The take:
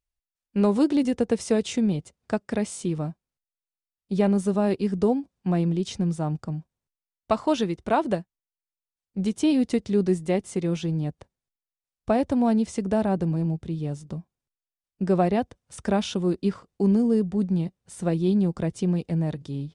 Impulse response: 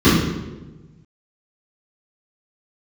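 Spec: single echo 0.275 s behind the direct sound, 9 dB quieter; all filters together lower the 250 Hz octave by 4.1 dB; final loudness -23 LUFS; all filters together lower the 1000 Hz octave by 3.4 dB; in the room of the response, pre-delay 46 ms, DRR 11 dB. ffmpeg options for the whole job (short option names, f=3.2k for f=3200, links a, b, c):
-filter_complex "[0:a]equalizer=f=250:t=o:g=-5.5,equalizer=f=1k:t=o:g=-4.5,aecho=1:1:275:0.355,asplit=2[a][b];[1:a]atrim=start_sample=2205,adelay=46[c];[b][c]afir=irnorm=-1:irlink=0,volume=-36.5dB[d];[a][d]amix=inputs=2:normalize=0,volume=1dB"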